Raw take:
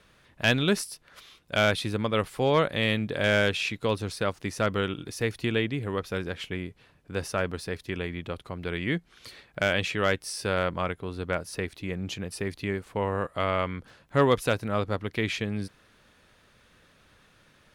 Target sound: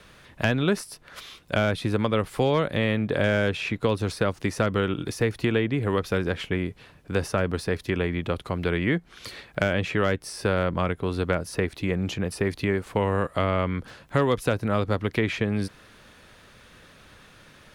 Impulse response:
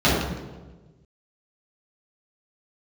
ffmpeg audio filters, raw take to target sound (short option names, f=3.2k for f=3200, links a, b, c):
-filter_complex "[0:a]acrossover=split=400|1900[a][b][c];[a]acompressor=threshold=-32dB:ratio=4[d];[b]acompressor=threshold=-34dB:ratio=4[e];[c]acompressor=threshold=-46dB:ratio=4[f];[d][e][f]amix=inputs=3:normalize=0,volume=8.5dB"